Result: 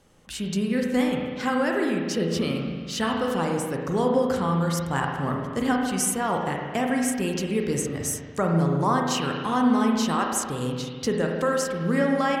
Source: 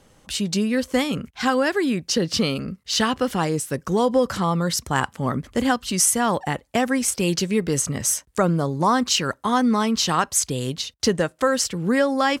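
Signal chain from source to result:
dynamic equaliser 4,600 Hz, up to −6 dB, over −37 dBFS, Q 1.2
spring reverb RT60 1.7 s, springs 36/48 ms, chirp 75 ms, DRR 0.5 dB
level −5.5 dB

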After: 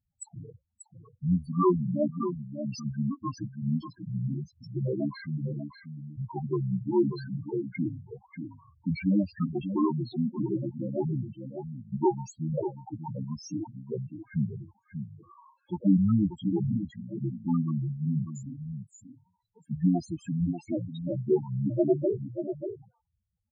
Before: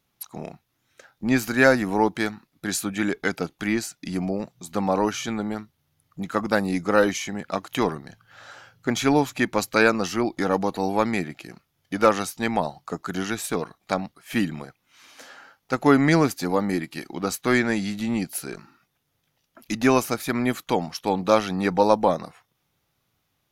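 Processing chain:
pitch shifter −6.5 semitones
single-tap delay 588 ms −8.5 dB
spectral peaks only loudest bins 4
level −3 dB

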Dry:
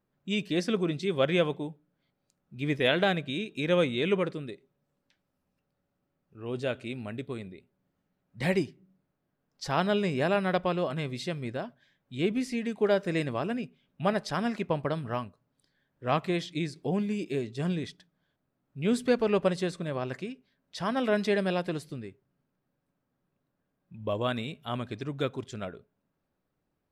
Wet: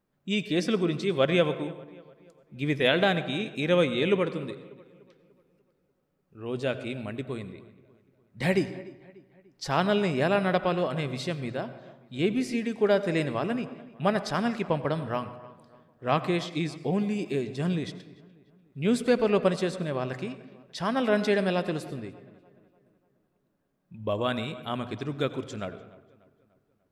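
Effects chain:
mains-hum notches 60/120 Hz
feedback echo with a low-pass in the loop 295 ms, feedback 49%, low-pass 3,500 Hz, level −21 dB
convolution reverb RT60 1.0 s, pre-delay 81 ms, DRR 13 dB
level +2 dB

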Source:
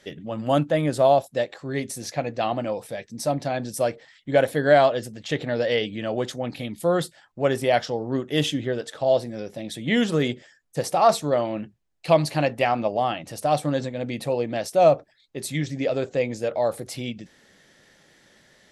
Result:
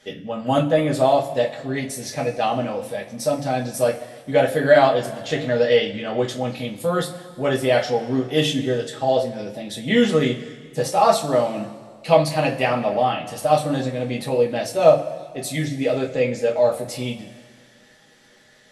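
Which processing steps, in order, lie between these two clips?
coupled-rooms reverb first 0.23 s, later 1.9 s, from −19 dB, DRR −2.5 dB
level −1 dB

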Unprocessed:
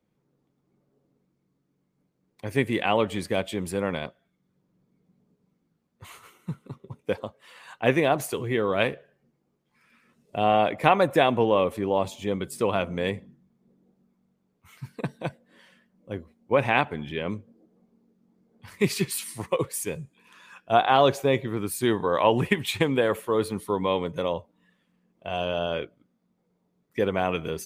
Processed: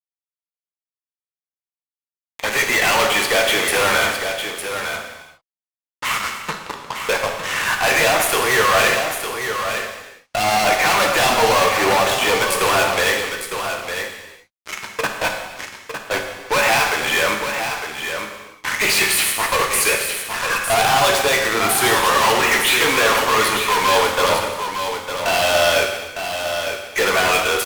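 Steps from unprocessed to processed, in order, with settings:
adaptive Wiener filter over 9 samples
de-essing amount 70%
high-pass filter 1,200 Hz 12 dB per octave
in parallel at −3 dB: downward compressor, threshold −44 dBFS, peak gain reduction 21 dB
on the sum: fuzz pedal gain 51 dB, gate −51 dBFS
on a send: single-tap delay 906 ms −7.5 dB
on the sum: reverb whose tail is shaped and stops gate 430 ms falling, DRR 2 dB
level −3 dB

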